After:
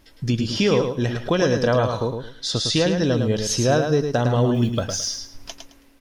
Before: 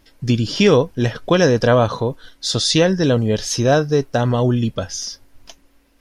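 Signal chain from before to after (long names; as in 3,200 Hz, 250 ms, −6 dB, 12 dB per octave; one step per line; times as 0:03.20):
0:04.54–0:05.09: mu-law and A-law mismatch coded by A
automatic gain control gain up to 5 dB
0:02.06–0:02.74: high-shelf EQ 6,400 Hz −8.5 dB
downward compressor 1.5 to 1, threshold −27 dBFS, peak gain reduction 7 dB
repeating echo 108 ms, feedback 23%, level −6 dB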